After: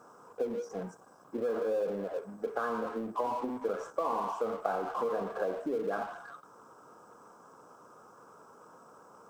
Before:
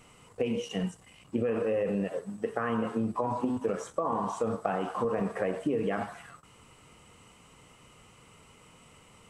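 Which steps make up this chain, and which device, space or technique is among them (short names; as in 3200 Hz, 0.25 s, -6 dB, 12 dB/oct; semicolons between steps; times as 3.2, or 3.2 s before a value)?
FFT band-reject 1700–4900 Hz; phone line with mismatched companding (BPF 360–3500 Hz; G.711 law mismatch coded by mu); gain -2 dB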